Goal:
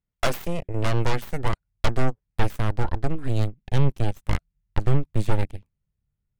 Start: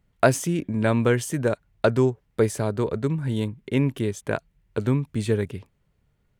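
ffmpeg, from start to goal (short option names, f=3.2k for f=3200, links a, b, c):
-af "aeval=exprs='0.562*(cos(1*acos(clip(val(0)/0.562,-1,1)))-cos(1*PI/2))+0.178*(cos(6*acos(clip(val(0)/0.562,-1,1)))-cos(6*PI/2))+0.0891*(cos(7*acos(clip(val(0)/0.562,-1,1)))-cos(7*PI/2))':c=same,asoftclip=type=tanh:threshold=-14.5dB,asubboost=boost=3:cutoff=230"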